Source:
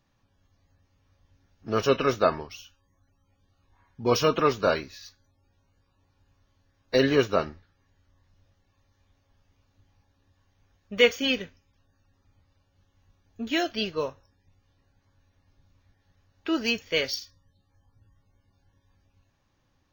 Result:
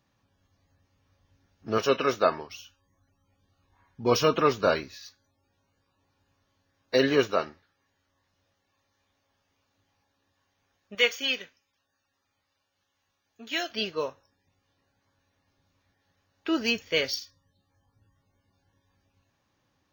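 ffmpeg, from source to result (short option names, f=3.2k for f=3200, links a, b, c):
-af "asetnsamples=n=441:p=0,asendcmd='1.78 highpass f 290;2.5 highpass f 74;4.97 highpass f 200;7.31 highpass f 430;10.95 highpass f 1100;13.7 highpass f 280;16.48 highpass f 69;17.19 highpass f 150',highpass=f=84:p=1"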